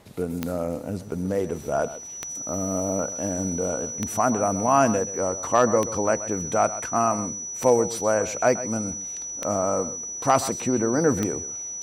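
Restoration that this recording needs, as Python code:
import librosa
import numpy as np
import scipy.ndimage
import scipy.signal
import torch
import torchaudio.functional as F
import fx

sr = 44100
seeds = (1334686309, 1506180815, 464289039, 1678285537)

y = fx.fix_declip(x, sr, threshold_db=-7.5)
y = fx.fix_declick_ar(y, sr, threshold=10.0)
y = fx.notch(y, sr, hz=5900.0, q=30.0)
y = fx.fix_echo_inverse(y, sr, delay_ms=130, level_db=-14.5)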